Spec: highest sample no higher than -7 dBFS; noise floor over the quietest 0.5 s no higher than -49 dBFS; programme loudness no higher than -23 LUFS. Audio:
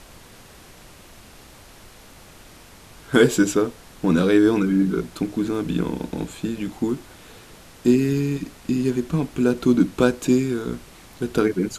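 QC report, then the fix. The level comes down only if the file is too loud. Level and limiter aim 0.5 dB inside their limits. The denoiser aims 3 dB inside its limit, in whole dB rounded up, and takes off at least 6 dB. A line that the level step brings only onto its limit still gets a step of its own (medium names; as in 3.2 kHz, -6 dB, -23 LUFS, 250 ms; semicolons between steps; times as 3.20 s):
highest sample -3.5 dBFS: fail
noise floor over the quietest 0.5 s -46 dBFS: fail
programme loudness -22.0 LUFS: fail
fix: noise reduction 6 dB, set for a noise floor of -46 dBFS; trim -1.5 dB; peak limiter -7.5 dBFS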